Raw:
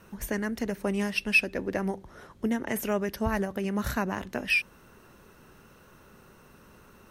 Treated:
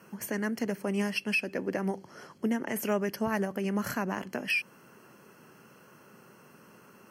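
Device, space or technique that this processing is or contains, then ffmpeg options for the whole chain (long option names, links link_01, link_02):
PA system with an anti-feedback notch: -filter_complex "[0:a]asettb=1/sr,asplit=3[link_01][link_02][link_03];[link_01]atrim=end=1.944[link_04];[link_02]atrim=start=1.94:end=2.38,asetpts=PTS-STARTPTS,afade=type=in:duration=0.004:curve=qsin,afade=type=out:start_time=0.436:duration=0.004:curve=qsin,equalizer=frequency=4800:width=1.2:gain=8[link_05];[link_03]atrim=start=2.376[link_06];[link_04][link_05]acrossfade=duration=0.004:curve1=hsin:curve2=qsin[link_07];[link_07][link_06]acrossfade=duration=0.004:curve1=qsin:curve2=hsin,highpass=frequency=130:width=0.5412,highpass=frequency=130:width=1.3066,asuperstop=centerf=3700:order=8:qfactor=5.3,alimiter=limit=-19.5dB:level=0:latency=1:release=131"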